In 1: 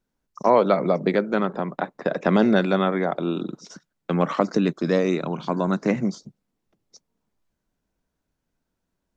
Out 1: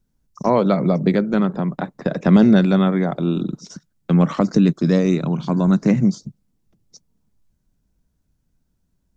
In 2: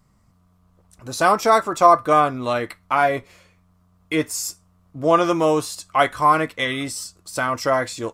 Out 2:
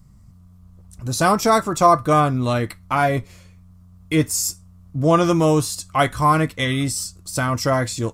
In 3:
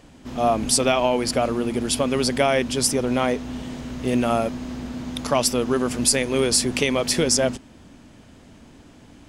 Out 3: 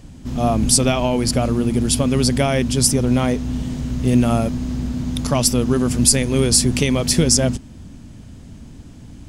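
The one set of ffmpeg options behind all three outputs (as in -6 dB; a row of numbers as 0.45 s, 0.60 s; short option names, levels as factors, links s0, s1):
-af "bass=f=250:g=15,treble=f=4000:g=7,volume=0.841"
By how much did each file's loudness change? +5.0 LU, +0.5 LU, +4.0 LU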